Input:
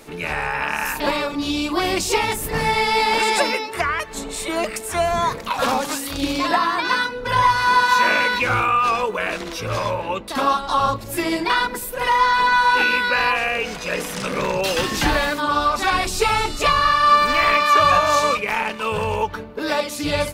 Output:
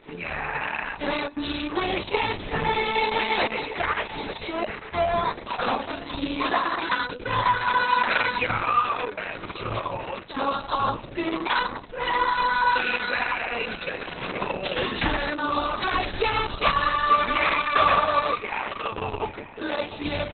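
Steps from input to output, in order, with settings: flange 0.48 Hz, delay 6.2 ms, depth 4.7 ms, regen -80%; on a send: feedback echo 0.89 s, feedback 16%, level -14 dB; on the sum: Opus 6 kbps 48000 Hz

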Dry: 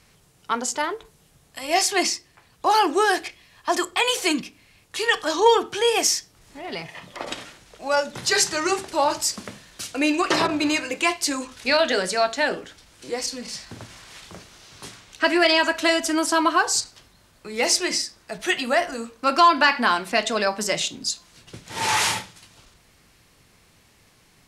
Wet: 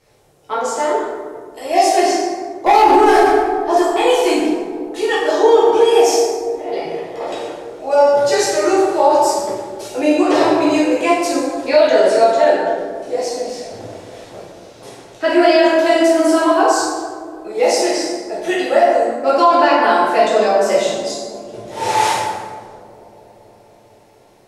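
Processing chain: band shelf 510 Hz +11 dB; 2.66–3.2 sample leveller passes 2; on a send: dark delay 0.238 s, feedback 79%, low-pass 450 Hz, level -14 dB; on the sum: plate-style reverb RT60 1.5 s, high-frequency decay 0.55×, DRR -8.5 dB; maximiser -7 dB; gain -1 dB

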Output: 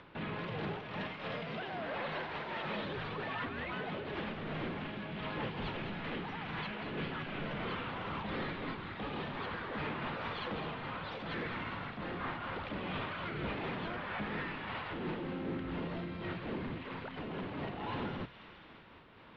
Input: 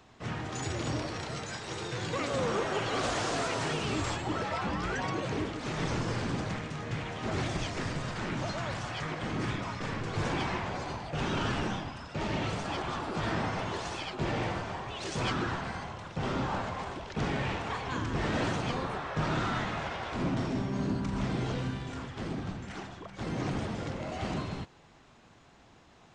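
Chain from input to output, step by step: steep low-pass 2600 Hz 36 dB/oct; notches 50/100 Hz; in parallel at +2.5 dB: compressor, threshold -41 dBFS, peak gain reduction 13.5 dB; on the sum: limiter -27 dBFS, peak gain reduction 7.5 dB; upward compressor, threshold -54 dBFS; on a send: thin delay 0.28 s, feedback 67%, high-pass 1500 Hz, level -8 dB; on the sum: speed mistake 33 rpm record played at 45 rpm; noise-modulated level, depth 65%; gain -1.5 dB

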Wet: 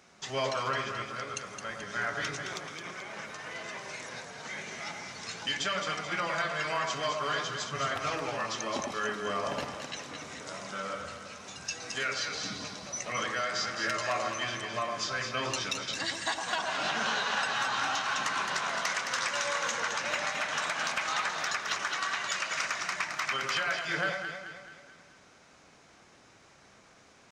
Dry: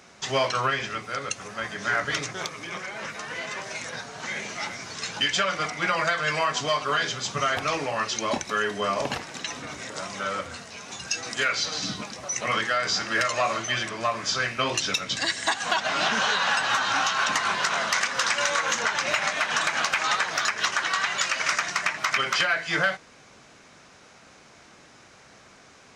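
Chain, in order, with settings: tempo 0.95×; echo with dull and thin repeats by turns 0.108 s, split 1200 Hz, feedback 69%, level -3 dB; gain -8 dB

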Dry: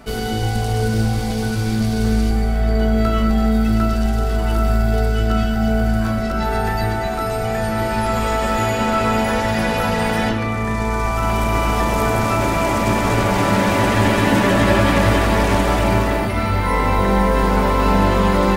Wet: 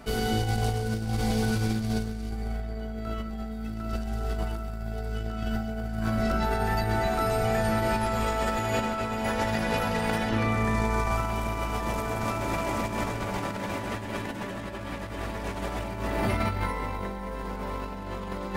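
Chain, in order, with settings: negative-ratio compressor -20 dBFS, ratio -0.5; gain -8 dB

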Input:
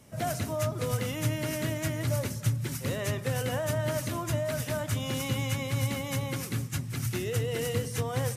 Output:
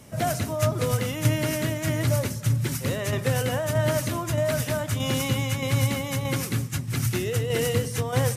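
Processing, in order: tremolo saw down 1.6 Hz, depth 45%; gain +7.5 dB

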